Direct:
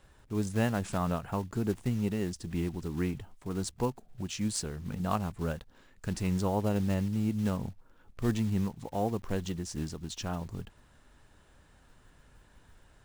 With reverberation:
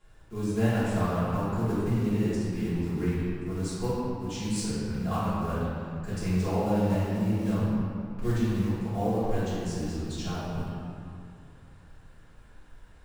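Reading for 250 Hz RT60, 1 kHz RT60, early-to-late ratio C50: 2.7 s, 2.5 s, -4.0 dB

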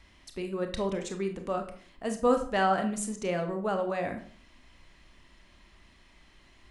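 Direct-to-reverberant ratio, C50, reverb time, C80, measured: 5.5 dB, 9.5 dB, 0.50 s, 14.0 dB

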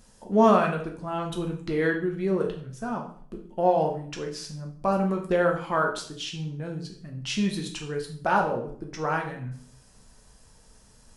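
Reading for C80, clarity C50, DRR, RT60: 12.0 dB, 8.0 dB, 1.5 dB, 0.55 s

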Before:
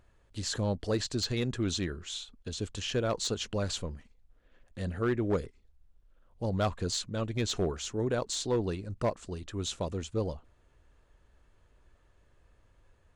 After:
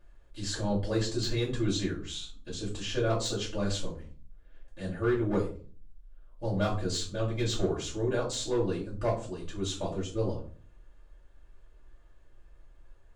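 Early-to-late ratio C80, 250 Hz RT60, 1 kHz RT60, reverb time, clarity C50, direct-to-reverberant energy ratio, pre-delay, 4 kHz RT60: 14.0 dB, 0.60 s, 0.35 s, 0.45 s, 9.5 dB, -7.5 dB, 3 ms, 0.25 s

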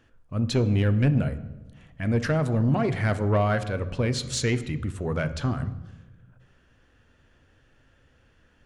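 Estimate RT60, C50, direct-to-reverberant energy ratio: 1.1 s, 14.0 dB, 11.5 dB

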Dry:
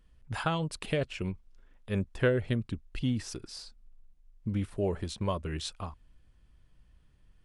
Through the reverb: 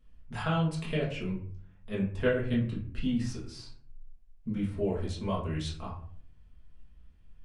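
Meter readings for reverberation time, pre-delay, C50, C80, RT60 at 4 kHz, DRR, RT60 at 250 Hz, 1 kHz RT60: 0.55 s, 4 ms, 6.0 dB, 11.5 dB, 0.30 s, -6.0 dB, 0.75 s, 0.50 s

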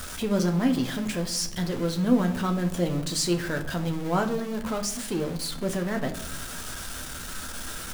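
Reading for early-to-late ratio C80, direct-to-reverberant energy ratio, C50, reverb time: 15.5 dB, 4.0 dB, 12.5 dB, 0.75 s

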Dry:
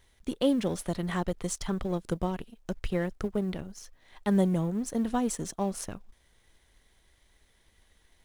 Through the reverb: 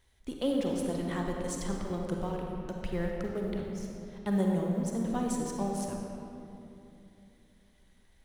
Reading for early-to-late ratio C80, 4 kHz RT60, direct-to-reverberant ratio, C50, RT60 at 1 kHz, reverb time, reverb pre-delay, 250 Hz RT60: 2.0 dB, 1.6 s, 0.0 dB, 0.5 dB, 2.7 s, 2.9 s, 37 ms, 3.6 s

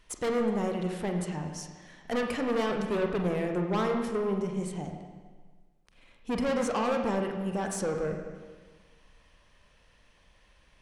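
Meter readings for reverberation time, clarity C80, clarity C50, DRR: 1.5 s, 6.0 dB, 5.0 dB, 3.0 dB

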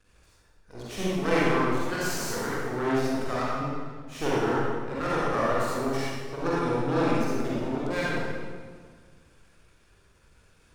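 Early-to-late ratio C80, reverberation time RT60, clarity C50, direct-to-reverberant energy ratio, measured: -1.5 dB, 1.7 s, -5.0 dB, -8.0 dB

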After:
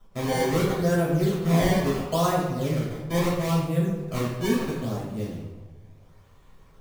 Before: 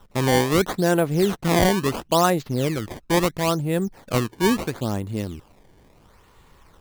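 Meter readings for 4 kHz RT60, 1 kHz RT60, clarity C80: 0.80 s, 1.1 s, 4.0 dB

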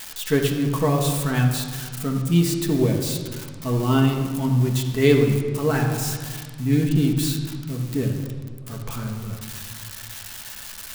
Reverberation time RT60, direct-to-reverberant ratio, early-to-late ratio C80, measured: 1.7 s, 0.5 dB, 6.5 dB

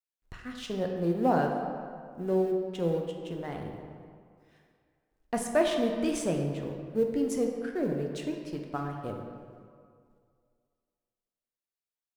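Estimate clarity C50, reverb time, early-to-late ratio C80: 4.0 dB, 2.2 s, 5.0 dB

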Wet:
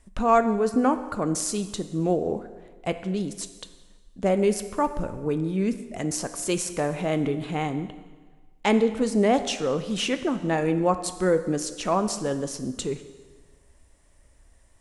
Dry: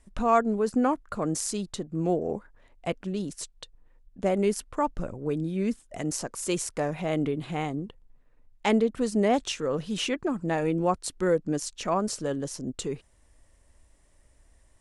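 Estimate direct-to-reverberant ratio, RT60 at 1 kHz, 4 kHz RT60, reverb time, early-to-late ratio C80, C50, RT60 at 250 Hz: 9.5 dB, 1.4 s, 1.3 s, 1.4 s, 13.0 dB, 11.5 dB, 1.4 s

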